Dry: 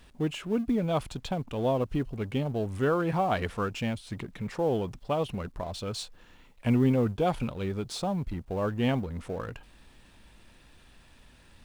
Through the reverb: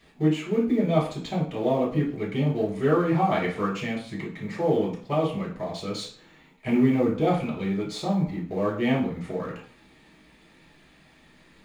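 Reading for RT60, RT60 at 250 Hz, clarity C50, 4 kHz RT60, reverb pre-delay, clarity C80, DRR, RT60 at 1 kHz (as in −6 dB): 0.45 s, 0.50 s, 6.5 dB, 0.45 s, 3 ms, 12.0 dB, −5.5 dB, 0.45 s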